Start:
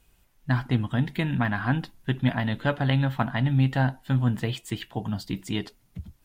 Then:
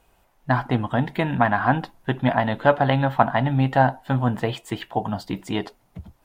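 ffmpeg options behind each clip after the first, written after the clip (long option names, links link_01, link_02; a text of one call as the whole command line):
ffmpeg -i in.wav -af "equalizer=frequency=750:width_type=o:width=2.1:gain=14.5,volume=-1.5dB" out.wav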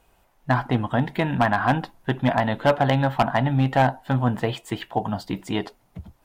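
ffmpeg -i in.wav -af "volume=11dB,asoftclip=hard,volume=-11dB" out.wav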